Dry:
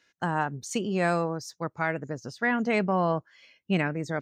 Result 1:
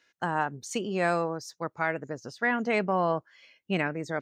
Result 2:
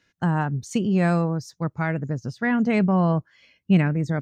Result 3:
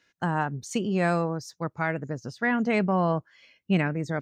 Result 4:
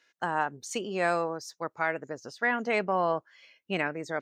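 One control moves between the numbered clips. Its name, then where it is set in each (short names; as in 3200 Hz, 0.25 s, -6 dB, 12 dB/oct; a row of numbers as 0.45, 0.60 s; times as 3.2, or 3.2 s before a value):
tone controls, bass: -6, +13, +4, -14 dB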